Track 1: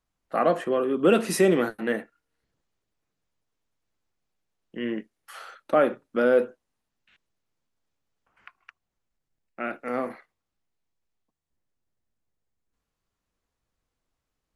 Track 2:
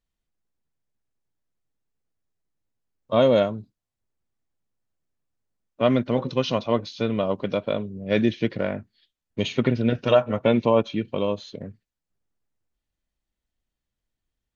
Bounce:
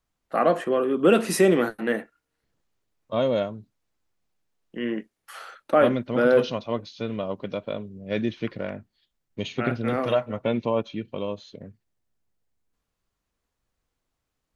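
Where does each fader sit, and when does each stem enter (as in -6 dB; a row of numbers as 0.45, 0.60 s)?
+1.5, -5.5 dB; 0.00, 0.00 s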